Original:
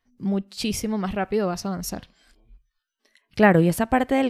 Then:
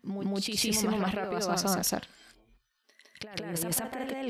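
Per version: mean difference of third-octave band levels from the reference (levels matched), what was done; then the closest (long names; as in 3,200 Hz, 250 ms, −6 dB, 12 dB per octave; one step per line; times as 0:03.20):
10.5 dB: high-pass filter 340 Hz 6 dB per octave
compressor whose output falls as the input rises −31 dBFS, ratio −1
backwards echo 160 ms −4 dB
level −1.5 dB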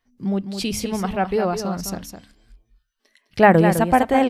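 3.0 dB: hum removal 70.29 Hz, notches 4
dynamic equaliser 810 Hz, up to +5 dB, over −33 dBFS, Q 1.7
on a send: single-tap delay 208 ms −8.5 dB
on the sum: level +1.5 dB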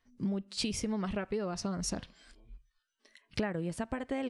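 5.0 dB: downsampling to 22,050 Hz
downward compressor 16 to 1, threshold −30 dBFS, peak gain reduction 20.5 dB
notch filter 760 Hz, Q 12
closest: second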